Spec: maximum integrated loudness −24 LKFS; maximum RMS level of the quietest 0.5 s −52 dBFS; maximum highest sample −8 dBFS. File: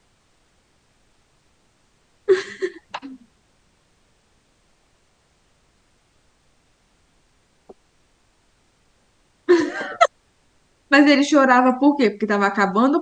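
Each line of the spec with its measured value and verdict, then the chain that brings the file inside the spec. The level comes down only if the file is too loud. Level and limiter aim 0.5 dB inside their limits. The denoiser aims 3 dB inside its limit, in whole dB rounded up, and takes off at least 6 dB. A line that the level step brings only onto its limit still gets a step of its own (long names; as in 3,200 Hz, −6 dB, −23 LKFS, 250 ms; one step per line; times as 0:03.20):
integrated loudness −18.0 LKFS: out of spec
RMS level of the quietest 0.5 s −62 dBFS: in spec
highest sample −2.0 dBFS: out of spec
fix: level −6.5 dB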